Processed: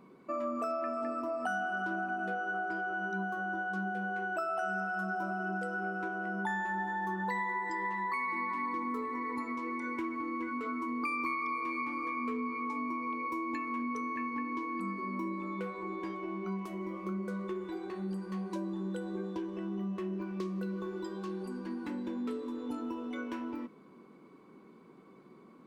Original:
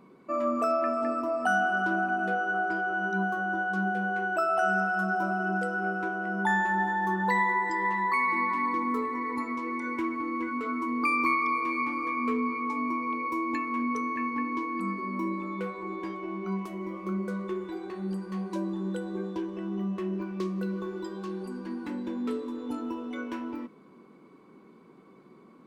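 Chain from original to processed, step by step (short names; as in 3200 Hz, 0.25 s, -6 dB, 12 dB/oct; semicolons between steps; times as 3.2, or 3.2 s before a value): compressor 2.5:1, threshold -32 dBFS, peak gain reduction 7.5 dB; gain -2 dB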